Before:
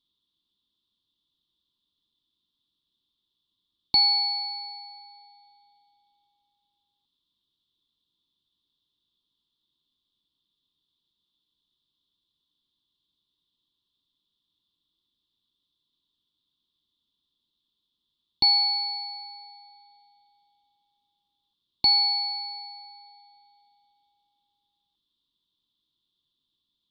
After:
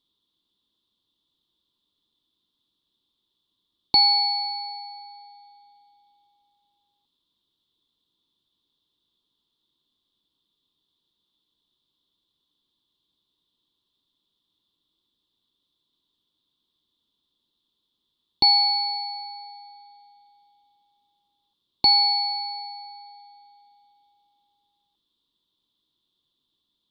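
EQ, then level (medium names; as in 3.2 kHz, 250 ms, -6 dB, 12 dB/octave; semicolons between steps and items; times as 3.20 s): peaking EQ 560 Hz +7 dB 2.1 oct; +2.0 dB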